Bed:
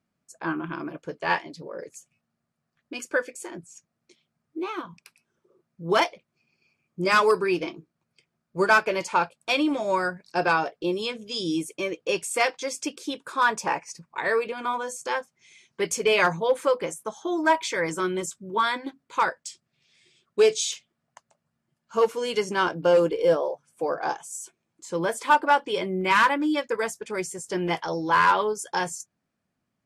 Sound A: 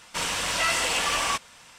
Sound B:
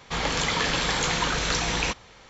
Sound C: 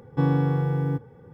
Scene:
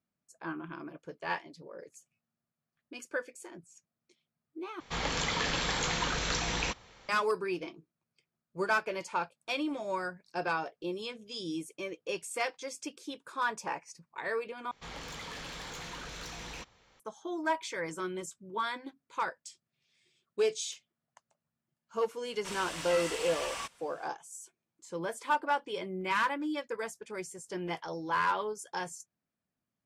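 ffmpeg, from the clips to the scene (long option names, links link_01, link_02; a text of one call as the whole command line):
ffmpeg -i bed.wav -i cue0.wav -i cue1.wav -filter_complex "[2:a]asplit=2[link_01][link_02];[0:a]volume=-10dB[link_03];[link_02]asoftclip=type=tanh:threshold=-23.5dB[link_04];[link_03]asplit=3[link_05][link_06][link_07];[link_05]atrim=end=4.804[link_08];[link_01]atrim=end=2.29,asetpts=PTS-STARTPTS,volume=-6.5dB[link_09];[link_06]atrim=start=7.086:end=14.714[link_10];[link_04]atrim=end=2.29,asetpts=PTS-STARTPTS,volume=-14.5dB[link_11];[link_07]atrim=start=16.996[link_12];[1:a]atrim=end=1.78,asetpts=PTS-STARTPTS,volume=-13dB,afade=type=in:duration=0.004:curve=hsin,afade=type=out:start_time=1.776:duration=0.004:curve=hsin,adelay=22300[link_13];[link_08][link_09]acrossfade=duration=0.004:curve1=hsin:curve2=hsin[link_14];[link_14][link_10]acrossfade=duration=0.004:curve1=hsin:curve2=hsin[link_15];[link_15][link_11]acrossfade=duration=0.004:curve1=hsin:curve2=hsin[link_16];[link_16][link_12]acrossfade=duration=0.004:curve1=hsin:curve2=hsin[link_17];[link_17][link_13]amix=inputs=2:normalize=0" out.wav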